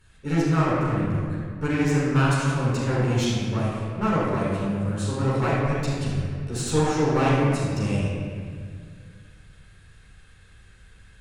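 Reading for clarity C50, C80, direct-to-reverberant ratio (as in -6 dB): -3.5 dB, -0.5 dB, -10.5 dB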